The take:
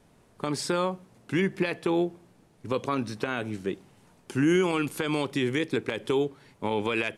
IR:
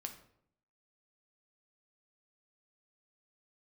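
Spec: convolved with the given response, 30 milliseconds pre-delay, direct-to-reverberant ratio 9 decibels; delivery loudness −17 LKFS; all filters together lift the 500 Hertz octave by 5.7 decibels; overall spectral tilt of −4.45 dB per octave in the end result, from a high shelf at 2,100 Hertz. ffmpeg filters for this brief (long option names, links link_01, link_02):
-filter_complex "[0:a]equalizer=frequency=500:width_type=o:gain=7,highshelf=frequency=2100:gain=8.5,asplit=2[link_01][link_02];[1:a]atrim=start_sample=2205,adelay=30[link_03];[link_02][link_03]afir=irnorm=-1:irlink=0,volume=-6dB[link_04];[link_01][link_04]amix=inputs=2:normalize=0,volume=7dB"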